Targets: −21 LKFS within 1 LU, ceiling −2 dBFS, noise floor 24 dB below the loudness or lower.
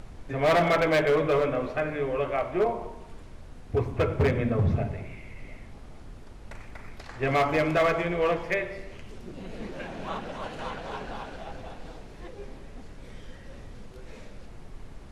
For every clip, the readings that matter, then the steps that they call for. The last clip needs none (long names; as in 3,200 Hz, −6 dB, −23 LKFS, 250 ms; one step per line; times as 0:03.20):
share of clipped samples 1.4%; peaks flattened at −18.0 dBFS; background noise floor −45 dBFS; target noise floor −51 dBFS; integrated loudness −27.0 LKFS; sample peak −18.0 dBFS; target loudness −21.0 LKFS
→ clipped peaks rebuilt −18 dBFS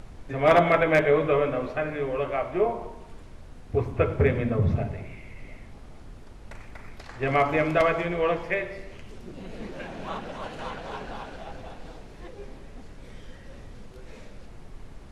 share of clipped samples 0.0%; background noise floor −45 dBFS; target noise floor −50 dBFS
→ noise reduction from a noise print 6 dB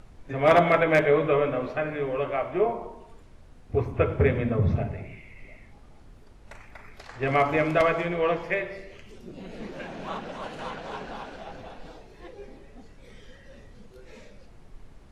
background noise floor −51 dBFS; integrated loudness −25.5 LKFS; sample peak −9.0 dBFS; target loudness −21.0 LKFS
→ level +4.5 dB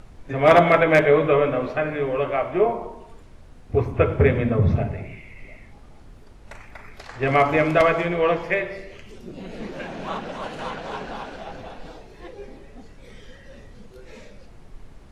integrated loudness −21.0 LKFS; sample peak −4.5 dBFS; background noise floor −46 dBFS